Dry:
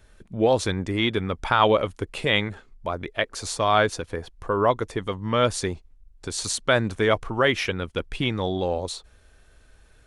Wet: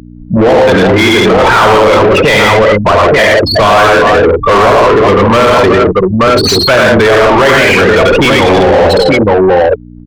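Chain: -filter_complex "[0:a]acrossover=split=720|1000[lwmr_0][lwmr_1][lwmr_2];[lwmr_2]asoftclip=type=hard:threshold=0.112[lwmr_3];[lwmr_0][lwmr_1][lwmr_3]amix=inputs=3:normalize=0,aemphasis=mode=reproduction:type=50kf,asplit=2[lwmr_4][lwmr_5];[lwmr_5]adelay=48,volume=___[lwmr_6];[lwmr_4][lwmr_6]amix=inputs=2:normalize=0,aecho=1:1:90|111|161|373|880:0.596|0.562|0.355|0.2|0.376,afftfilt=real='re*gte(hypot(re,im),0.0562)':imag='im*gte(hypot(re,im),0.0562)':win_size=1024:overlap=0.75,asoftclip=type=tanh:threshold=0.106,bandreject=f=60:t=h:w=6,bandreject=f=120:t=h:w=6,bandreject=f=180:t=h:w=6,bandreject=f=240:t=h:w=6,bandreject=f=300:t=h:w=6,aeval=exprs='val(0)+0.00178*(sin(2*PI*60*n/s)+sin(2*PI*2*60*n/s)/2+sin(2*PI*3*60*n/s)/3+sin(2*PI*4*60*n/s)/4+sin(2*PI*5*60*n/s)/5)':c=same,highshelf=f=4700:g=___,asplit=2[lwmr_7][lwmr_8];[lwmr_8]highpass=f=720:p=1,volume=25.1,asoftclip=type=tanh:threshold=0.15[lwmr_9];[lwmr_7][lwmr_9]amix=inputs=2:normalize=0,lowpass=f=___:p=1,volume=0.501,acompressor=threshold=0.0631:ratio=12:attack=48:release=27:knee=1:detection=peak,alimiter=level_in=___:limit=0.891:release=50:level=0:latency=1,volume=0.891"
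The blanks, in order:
0.316, 4.5, 2600, 10.6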